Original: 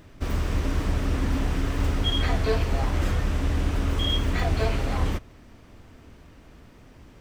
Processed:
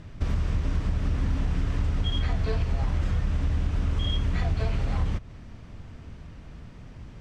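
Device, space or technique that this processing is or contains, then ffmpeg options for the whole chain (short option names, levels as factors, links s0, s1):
jukebox: -af "lowpass=7200,lowshelf=f=220:t=q:w=1.5:g=6,acompressor=threshold=0.0631:ratio=4,volume=1.12"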